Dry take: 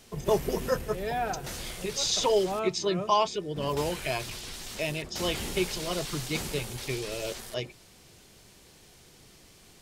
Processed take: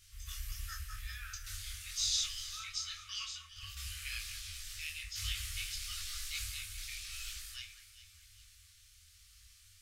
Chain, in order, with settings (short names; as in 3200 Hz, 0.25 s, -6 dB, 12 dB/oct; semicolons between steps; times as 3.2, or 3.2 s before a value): passive tone stack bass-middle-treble 6-0-2; Schroeder reverb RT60 0.36 s, combs from 33 ms, DRR 11 dB; FFT band-reject 100–1100 Hz; on a send: echo with dull and thin repeats by turns 0.202 s, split 2100 Hz, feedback 59%, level -8 dB; on the sum: detuned doubles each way 33 cents; gain +13.5 dB